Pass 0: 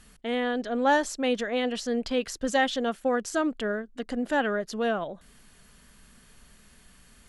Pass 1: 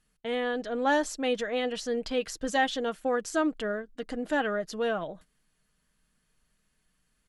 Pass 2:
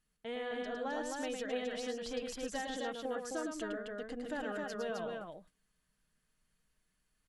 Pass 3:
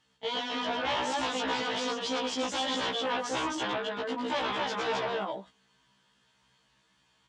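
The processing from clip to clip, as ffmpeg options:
-af "agate=range=-16dB:threshold=-46dB:ratio=16:detection=peak,aecho=1:1:6.4:0.35,volume=-2.5dB"
-filter_complex "[0:a]acompressor=threshold=-28dB:ratio=6,asplit=2[a][b];[b]aecho=0:1:107.9|262.4:0.562|0.708[c];[a][c]amix=inputs=2:normalize=0,volume=-8.5dB"
-af "aeval=exprs='0.0562*sin(PI/2*4.47*val(0)/0.0562)':c=same,highpass=110,equalizer=f=180:t=q:w=4:g=-5,equalizer=f=930:t=q:w=4:g=10,equalizer=f=3.3k:t=q:w=4:g=9,lowpass=f=7k:w=0.5412,lowpass=f=7k:w=1.3066,afftfilt=real='re*1.73*eq(mod(b,3),0)':imag='im*1.73*eq(mod(b,3),0)':win_size=2048:overlap=0.75,volume=-2dB"

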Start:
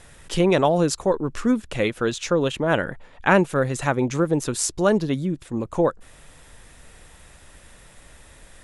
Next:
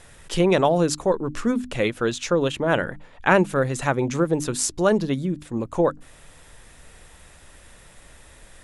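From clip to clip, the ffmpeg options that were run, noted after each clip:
-af "bandreject=f=50:t=h:w=6,bandreject=f=100:t=h:w=6,bandreject=f=150:t=h:w=6,bandreject=f=200:t=h:w=6,bandreject=f=250:t=h:w=6,bandreject=f=300:t=h:w=6"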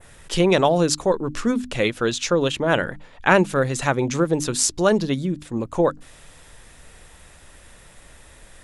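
-af "adynamicequalizer=threshold=0.00794:dfrequency=4700:dqfactor=0.75:tfrequency=4700:tqfactor=0.75:attack=5:release=100:ratio=0.375:range=2.5:mode=boostabove:tftype=bell,volume=1dB"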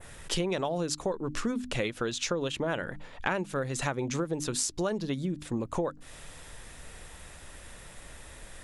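-af "acompressor=threshold=-28dB:ratio=6"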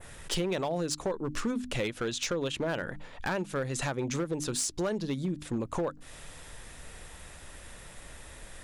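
-af "asoftclip=type=hard:threshold=-24.5dB"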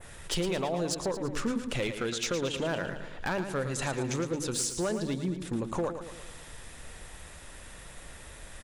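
-af "aecho=1:1:112|224|336|448|560|672:0.355|0.188|0.0997|0.0528|0.028|0.0148"

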